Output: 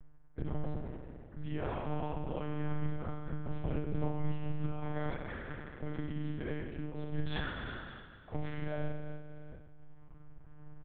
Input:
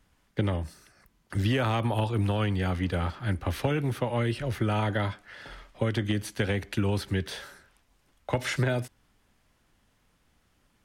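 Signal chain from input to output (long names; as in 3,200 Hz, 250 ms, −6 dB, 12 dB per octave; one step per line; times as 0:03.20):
reverb reduction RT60 1.6 s
low-pass that shuts in the quiet parts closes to 1,500 Hz, open at −26.5 dBFS
spectral tilt −3 dB per octave
hum removal 111 Hz, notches 9
reversed playback
downward compressor 6 to 1, threshold −45 dBFS, peak gain reduction 27 dB
reversed playback
single-tap delay 315 ms −20.5 dB
spring reverb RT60 2.1 s, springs 33 ms, chirp 55 ms, DRR −4 dB
one-pitch LPC vocoder at 8 kHz 150 Hz
amplitude modulation by smooth noise, depth 65%
level +8.5 dB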